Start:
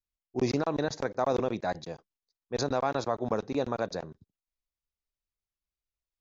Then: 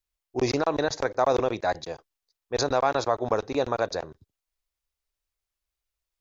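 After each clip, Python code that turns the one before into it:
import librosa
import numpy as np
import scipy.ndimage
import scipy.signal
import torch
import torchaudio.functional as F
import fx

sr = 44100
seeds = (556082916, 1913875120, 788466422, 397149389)

y = fx.peak_eq(x, sr, hz=190.0, db=-11.5, octaves=1.1)
y = y * librosa.db_to_amplitude(6.5)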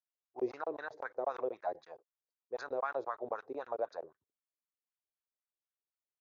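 y = fx.wah_lfo(x, sr, hz=3.9, low_hz=400.0, high_hz=1600.0, q=3.1)
y = y * librosa.db_to_amplitude(-6.0)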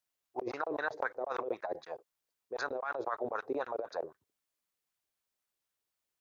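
y = fx.over_compress(x, sr, threshold_db=-40.0, ratio=-1.0)
y = y * librosa.db_to_amplitude(5.0)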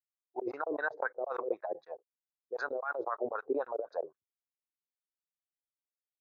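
y = fx.spectral_expand(x, sr, expansion=1.5)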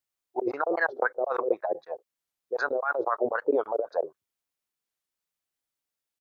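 y = fx.record_warp(x, sr, rpm=45.0, depth_cents=250.0)
y = y * librosa.db_to_amplitude(8.0)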